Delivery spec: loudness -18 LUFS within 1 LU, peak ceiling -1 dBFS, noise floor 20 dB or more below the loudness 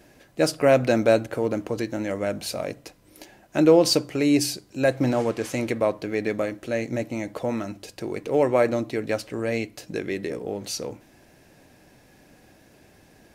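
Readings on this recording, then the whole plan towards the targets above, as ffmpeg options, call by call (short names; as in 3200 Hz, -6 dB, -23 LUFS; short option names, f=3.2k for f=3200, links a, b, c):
loudness -24.5 LUFS; peak -5.5 dBFS; loudness target -18.0 LUFS
-> -af "volume=6.5dB,alimiter=limit=-1dB:level=0:latency=1"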